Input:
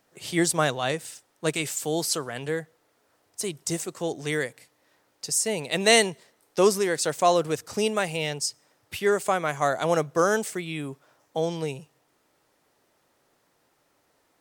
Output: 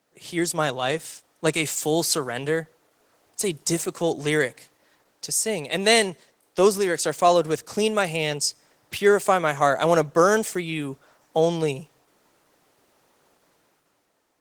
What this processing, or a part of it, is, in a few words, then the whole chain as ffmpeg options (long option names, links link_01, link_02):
video call: -af "highpass=110,dynaudnorm=framelen=140:gausssize=11:maxgain=8.5dB,volume=-2dB" -ar 48000 -c:a libopus -b:a 16k